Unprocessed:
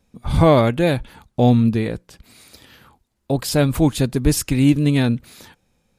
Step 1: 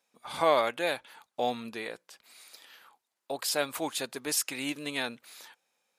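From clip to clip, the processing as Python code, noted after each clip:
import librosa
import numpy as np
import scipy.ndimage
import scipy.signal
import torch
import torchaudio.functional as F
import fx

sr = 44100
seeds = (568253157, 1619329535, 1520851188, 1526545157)

y = scipy.signal.sosfilt(scipy.signal.butter(2, 710.0, 'highpass', fs=sr, output='sos'), x)
y = y * librosa.db_to_amplitude(-5.0)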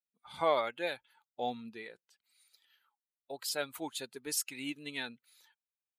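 y = fx.bin_expand(x, sr, power=1.5)
y = y * librosa.db_to_amplitude(-3.5)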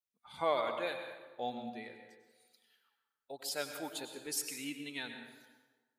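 y = fx.rev_plate(x, sr, seeds[0], rt60_s=1.3, hf_ratio=0.65, predelay_ms=85, drr_db=6.0)
y = y * librosa.db_to_amplitude(-3.0)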